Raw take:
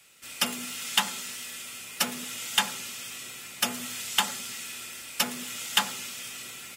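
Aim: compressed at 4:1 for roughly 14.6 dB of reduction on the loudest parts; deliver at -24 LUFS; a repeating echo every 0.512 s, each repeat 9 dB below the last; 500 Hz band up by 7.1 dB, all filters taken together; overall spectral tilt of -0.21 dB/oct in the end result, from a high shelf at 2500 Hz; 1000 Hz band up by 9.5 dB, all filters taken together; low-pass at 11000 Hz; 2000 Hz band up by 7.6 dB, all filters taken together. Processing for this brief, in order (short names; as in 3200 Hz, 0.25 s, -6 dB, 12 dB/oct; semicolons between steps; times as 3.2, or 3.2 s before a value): LPF 11000 Hz; bell 500 Hz +5.5 dB; bell 1000 Hz +8 dB; bell 2000 Hz +3 dB; high shelf 2500 Hz +8.5 dB; compressor 4:1, threshold -29 dBFS; feedback echo 0.512 s, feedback 35%, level -9 dB; gain +6 dB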